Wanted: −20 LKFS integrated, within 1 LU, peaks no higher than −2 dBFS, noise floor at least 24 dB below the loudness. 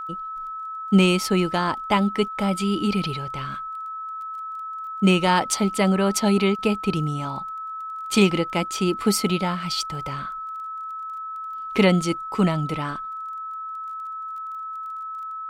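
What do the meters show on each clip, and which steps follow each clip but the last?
crackle rate 18 per second; interfering tone 1,300 Hz; level of the tone −30 dBFS; integrated loudness −24.0 LKFS; sample peak −6.0 dBFS; target loudness −20.0 LKFS
→ click removal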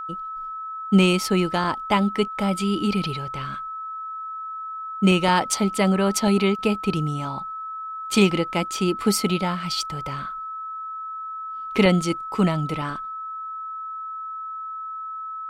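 crackle rate 0 per second; interfering tone 1,300 Hz; level of the tone −30 dBFS
→ notch filter 1,300 Hz, Q 30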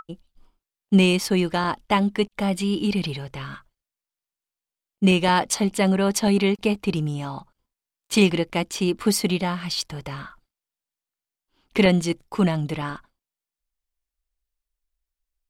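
interfering tone none found; integrated loudness −22.5 LKFS; sample peak −6.5 dBFS; target loudness −20.0 LKFS
→ level +2.5 dB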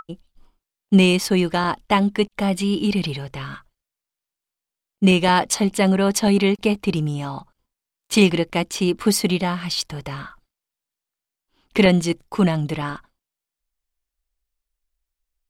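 integrated loudness −20.0 LKFS; sample peak −4.0 dBFS; background noise floor −87 dBFS

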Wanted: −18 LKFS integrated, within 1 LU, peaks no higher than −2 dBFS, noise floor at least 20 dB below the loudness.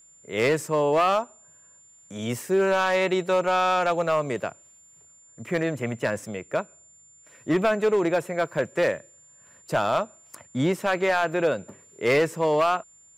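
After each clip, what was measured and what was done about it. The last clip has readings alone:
share of clipped samples 1.3%; peaks flattened at −15.5 dBFS; interfering tone 7,200 Hz; level of the tone −52 dBFS; integrated loudness −24.5 LKFS; sample peak −15.5 dBFS; target loudness −18.0 LKFS
→ clipped peaks rebuilt −15.5 dBFS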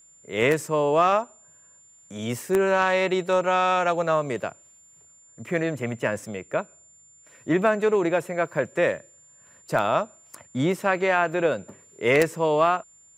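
share of clipped samples 0.0%; interfering tone 7,200 Hz; level of the tone −52 dBFS
→ notch filter 7,200 Hz, Q 30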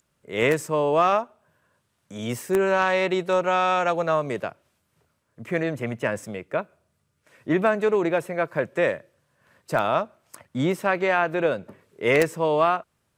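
interfering tone none found; integrated loudness −24.0 LKFS; sample peak −6.5 dBFS; target loudness −18.0 LKFS
→ level +6 dB
brickwall limiter −2 dBFS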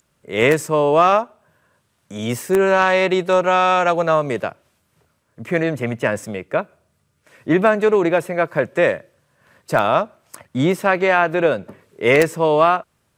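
integrated loudness −18.0 LKFS; sample peak −2.0 dBFS; background noise floor −67 dBFS

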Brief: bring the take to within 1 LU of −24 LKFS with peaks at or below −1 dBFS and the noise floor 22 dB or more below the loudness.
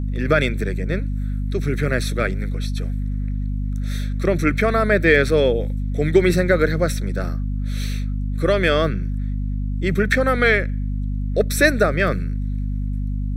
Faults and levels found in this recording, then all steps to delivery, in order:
mains hum 50 Hz; hum harmonics up to 250 Hz; level of the hum −21 dBFS; integrated loudness −21.0 LKFS; sample peak −2.0 dBFS; target loudness −24.0 LKFS
→ mains-hum notches 50/100/150/200/250 Hz
level −3 dB

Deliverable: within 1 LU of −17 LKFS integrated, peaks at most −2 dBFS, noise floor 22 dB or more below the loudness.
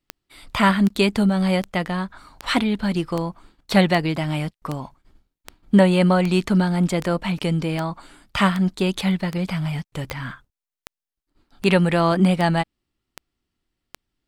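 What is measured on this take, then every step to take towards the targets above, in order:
number of clicks 19; integrated loudness −21.0 LKFS; sample peak −4.5 dBFS; target loudness −17.0 LKFS
→ click removal
level +4 dB
brickwall limiter −2 dBFS

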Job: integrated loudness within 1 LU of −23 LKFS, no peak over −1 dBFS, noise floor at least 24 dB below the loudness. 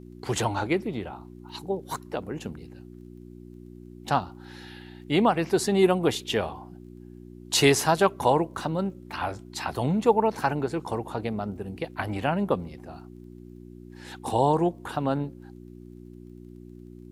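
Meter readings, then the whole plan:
crackle rate 22 per second; mains hum 60 Hz; hum harmonics up to 360 Hz; level of the hum −42 dBFS; integrated loudness −26.5 LKFS; sample peak −6.0 dBFS; target loudness −23.0 LKFS
→ click removal
hum removal 60 Hz, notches 6
level +3.5 dB

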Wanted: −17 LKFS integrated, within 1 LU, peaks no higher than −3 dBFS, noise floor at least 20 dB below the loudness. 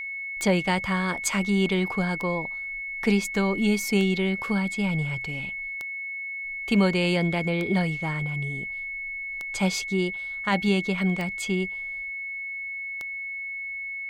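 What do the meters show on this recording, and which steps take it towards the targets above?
number of clicks 8; interfering tone 2,200 Hz; level of the tone −31 dBFS; integrated loudness −26.5 LKFS; sample peak −10.5 dBFS; target loudness −17.0 LKFS
→ click removal
notch filter 2,200 Hz, Q 30
level +9.5 dB
brickwall limiter −3 dBFS

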